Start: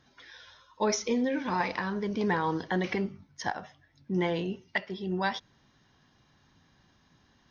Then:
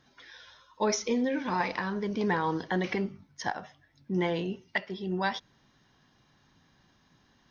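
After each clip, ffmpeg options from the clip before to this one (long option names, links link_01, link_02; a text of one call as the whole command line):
ffmpeg -i in.wav -af "equalizer=frequency=76:width_type=o:width=0.76:gain=-4.5" out.wav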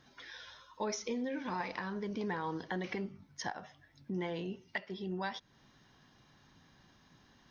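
ffmpeg -i in.wav -af "acompressor=threshold=-43dB:ratio=2,volume=1dB" out.wav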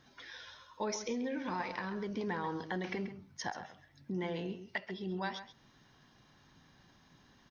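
ffmpeg -i in.wav -filter_complex "[0:a]asplit=2[link_01][link_02];[link_02]adelay=134.1,volume=-11dB,highshelf=frequency=4000:gain=-3.02[link_03];[link_01][link_03]amix=inputs=2:normalize=0" out.wav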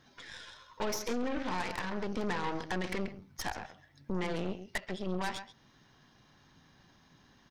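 ffmpeg -i in.wav -af "aeval=exprs='0.0631*(cos(1*acos(clip(val(0)/0.0631,-1,1)))-cos(1*PI/2))+0.0112*(cos(8*acos(clip(val(0)/0.0631,-1,1)))-cos(8*PI/2))':channel_layout=same,volume=1dB" out.wav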